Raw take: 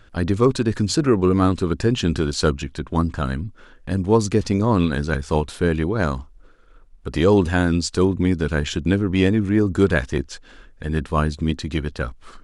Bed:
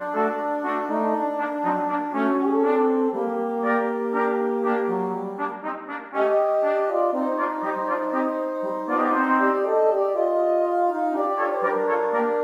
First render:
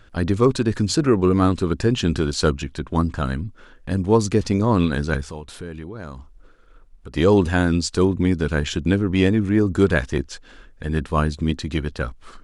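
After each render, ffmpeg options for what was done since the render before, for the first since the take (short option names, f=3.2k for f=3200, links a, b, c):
-filter_complex "[0:a]asplit=3[a][b][c];[a]afade=t=out:st=5.28:d=0.02[d];[b]acompressor=threshold=-36dB:ratio=2.5:attack=3.2:release=140:knee=1:detection=peak,afade=t=in:st=5.28:d=0.02,afade=t=out:st=7.16:d=0.02[e];[c]afade=t=in:st=7.16:d=0.02[f];[d][e][f]amix=inputs=3:normalize=0"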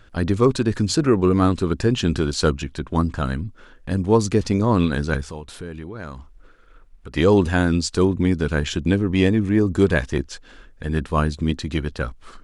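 -filter_complex "[0:a]asettb=1/sr,asplit=3[a][b][c];[a]atrim=end=5.854[d];[b]atrim=start=5.85:end=7.21,asetpts=PTS-STARTPTS,afade=t=in:d=0.004:c=qsin,afade=t=out:st=1.356:d=0.004:c=qsin,equalizer=f=2k:w=1:g=4.5[e];[c]atrim=start=7.206[f];[d][e]acrossfade=d=0.004:c1=hsin:c2=qsin[g];[g][f]acrossfade=d=0.004:c1=qsin:c2=hsin,asettb=1/sr,asplit=3[h][i][j];[h]atrim=end=8.804[k];[i]atrim=start=8.8:end=10.09,asetpts=PTS-STARTPTS,afade=t=in:d=0.004:c=qsin,afade=t=out:st=1.286:d=0.004:c=qsin,bandreject=f=1.4k:w=9.3[l];[j]atrim=start=10.086[m];[k][l]acrossfade=d=0.004:c1=hsin:c2=qsin[n];[n][m]acrossfade=d=0.004:c1=qsin:c2=hsin"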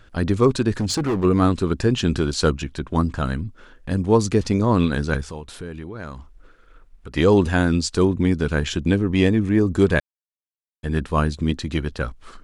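-filter_complex "[0:a]asplit=3[a][b][c];[a]afade=t=out:st=0.73:d=0.02[d];[b]asoftclip=type=hard:threshold=-18.5dB,afade=t=in:st=0.73:d=0.02,afade=t=out:st=1.23:d=0.02[e];[c]afade=t=in:st=1.23:d=0.02[f];[d][e][f]amix=inputs=3:normalize=0,asplit=3[g][h][i];[g]atrim=end=10,asetpts=PTS-STARTPTS,afade=t=out:st=9.996:d=0.004:c=hsin[j];[h]atrim=start=10:end=10.83,asetpts=PTS-STARTPTS,volume=0[k];[i]atrim=start=10.83,asetpts=PTS-STARTPTS,afade=t=in:d=0.004:c=hsin[l];[j][k][l]concat=n=3:v=0:a=1"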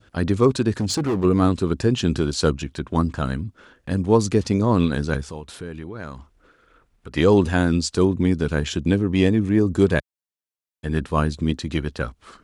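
-af "highpass=66,adynamicequalizer=threshold=0.0141:dfrequency=1700:dqfactor=0.8:tfrequency=1700:tqfactor=0.8:attack=5:release=100:ratio=0.375:range=1.5:mode=cutabove:tftype=bell"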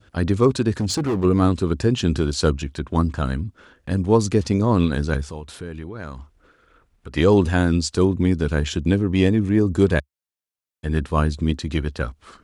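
-af "equalizer=f=71:t=o:w=0.71:g=5"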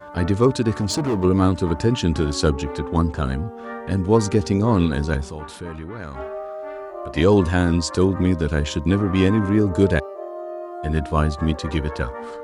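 -filter_complex "[1:a]volume=-11dB[a];[0:a][a]amix=inputs=2:normalize=0"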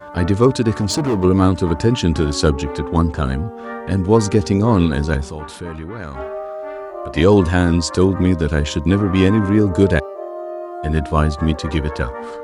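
-af "volume=3.5dB,alimiter=limit=-2dB:level=0:latency=1"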